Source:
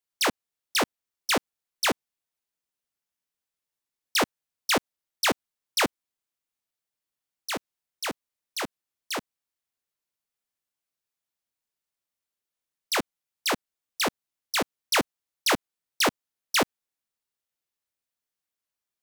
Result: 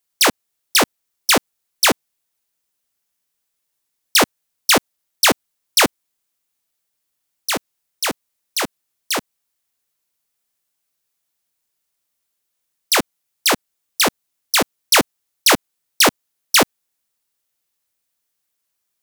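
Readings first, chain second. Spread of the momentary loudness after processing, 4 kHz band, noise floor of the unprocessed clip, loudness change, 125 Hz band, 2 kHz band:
9 LU, +10.5 dB, under -85 dBFS, +10.5 dB, +8.5 dB, +9.0 dB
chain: high shelf 5500 Hz +6.5 dB; gain +8.5 dB

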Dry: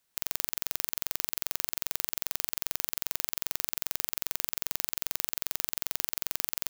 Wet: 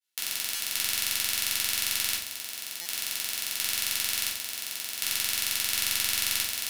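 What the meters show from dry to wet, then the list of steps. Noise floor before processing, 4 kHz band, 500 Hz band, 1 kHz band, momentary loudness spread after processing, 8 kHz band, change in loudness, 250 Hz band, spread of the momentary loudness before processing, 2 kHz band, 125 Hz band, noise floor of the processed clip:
-76 dBFS, +9.0 dB, -4.5 dB, 0.0 dB, 7 LU, +5.5 dB, +4.5 dB, -2.5 dB, 0 LU, +7.0 dB, -1.0 dB, -39 dBFS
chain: weighting filter D; expander -58 dBFS; bell 12000 Hz +8 dB 0.85 oct; limiter -5 dBFS, peak gain reduction 8.5 dB; random-step tremolo 1.4 Hz, depth 75%; soft clip -8.5 dBFS, distortion -15 dB; shoebox room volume 420 m³, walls furnished, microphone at 4.3 m; stuck buffer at 0.55/2.81, samples 256, times 7; gain +5 dB

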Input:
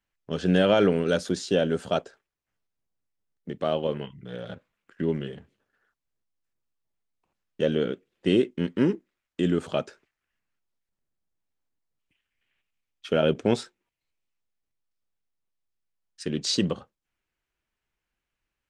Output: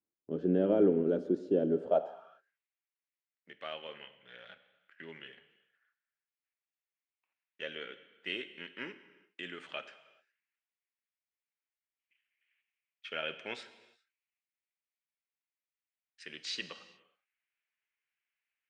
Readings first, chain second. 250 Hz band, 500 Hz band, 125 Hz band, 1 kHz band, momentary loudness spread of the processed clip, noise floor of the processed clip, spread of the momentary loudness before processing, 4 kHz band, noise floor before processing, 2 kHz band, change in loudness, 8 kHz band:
-9.0 dB, -8.0 dB, -14.0 dB, -10.0 dB, 23 LU, under -85 dBFS, 17 LU, -9.5 dB, under -85 dBFS, -7.0 dB, -8.0 dB, n/a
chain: non-linear reverb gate 0.44 s falling, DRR 11 dB; band-pass sweep 330 Hz -> 2200 Hz, 1.71–2.56

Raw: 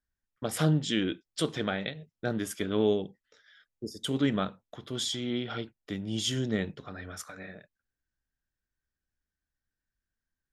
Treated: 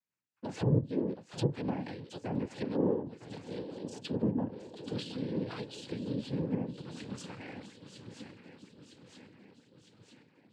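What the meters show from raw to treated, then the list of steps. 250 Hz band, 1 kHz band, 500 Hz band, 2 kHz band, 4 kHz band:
-2.5 dB, -5.0 dB, -3.5 dB, -11.0 dB, -12.5 dB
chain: swung echo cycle 0.958 s, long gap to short 3:1, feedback 55%, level -14.5 dB; treble ducked by the level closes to 530 Hz, closed at -23.5 dBFS; dynamic EQ 1300 Hz, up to -5 dB, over -48 dBFS, Q 0.74; rotary speaker horn 5 Hz, later 1.1 Hz, at 4.25; noise vocoder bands 8

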